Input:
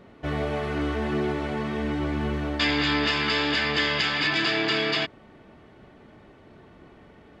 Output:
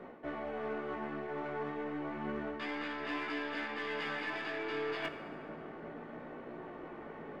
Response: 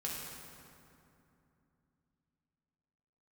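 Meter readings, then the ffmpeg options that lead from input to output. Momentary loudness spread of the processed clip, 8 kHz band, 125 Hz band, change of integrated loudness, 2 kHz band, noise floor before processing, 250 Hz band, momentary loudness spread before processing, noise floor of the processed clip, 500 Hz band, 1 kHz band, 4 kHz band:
10 LU, below −20 dB, −19.5 dB, −15.0 dB, −13.5 dB, −52 dBFS, −12.5 dB, 6 LU, −48 dBFS, −9.0 dB, −9.5 dB, −21.5 dB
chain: -filter_complex "[0:a]acrossover=split=230 2200:gain=0.178 1 0.126[link_01][link_02][link_03];[link_01][link_02][link_03]amix=inputs=3:normalize=0,bandreject=frequency=60:width_type=h:width=6,bandreject=frequency=120:width_type=h:width=6,bandreject=frequency=180:width_type=h:width=6,areverse,acompressor=threshold=-42dB:ratio=16,areverse,flanger=delay=16.5:depth=4:speed=0.31,aeval=exprs='0.0158*(cos(1*acos(clip(val(0)/0.0158,-1,1)))-cos(1*PI/2))+0.000794*(cos(4*acos(clip(val(0)/0.0158,-1,1)))-cos(4*PI/2))+0.000355*(cos(6*acos(clip(val(0)/0.0158,-1,1)))-cos(6*PI/2))+0.000355*(cos(8*acos(clip(val(0)/0.0158,-1,1)))-cos(8*PI/2))':channel_layout=same,asplit=2[link_04][link_05];[1:a]atrim=start_sample=2205[link_06];[link_05][link_06]afir=irnorm=-1:irlink=0,volume=-5.5dB[link_07];[link_04][link_07]amix=inputs=2:normalize=0,volume=6.5dB"

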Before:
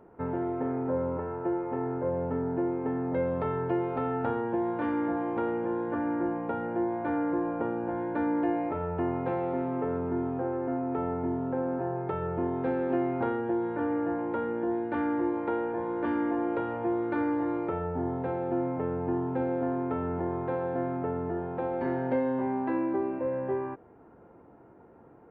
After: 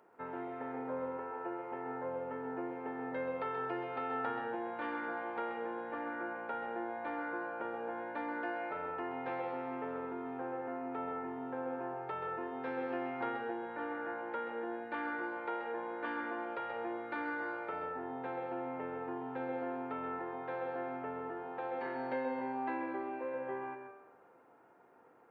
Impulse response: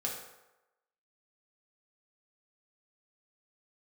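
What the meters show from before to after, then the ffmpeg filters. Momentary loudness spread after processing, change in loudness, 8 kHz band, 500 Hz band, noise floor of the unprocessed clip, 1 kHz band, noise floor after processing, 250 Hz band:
4 LU, −9.0 dB, can't be measured, −9.5 dB, −54 dBFS, −4.5 dB, −62 dBFS, −13.5 dB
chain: -filter_complex "[0:a]lowpass=frequency=2000:poles=1,aderivative,asplit=2[link_01][link_02];[1:a]atrim=start_sample=2205,adelay=130[link_03];[link_02][link_03]afir=irnorm=-1:irlink=0,volume=-7.5dB[link_04];[link_01][link_04]amix=inputs=2:normalize=0,volume=13dB"

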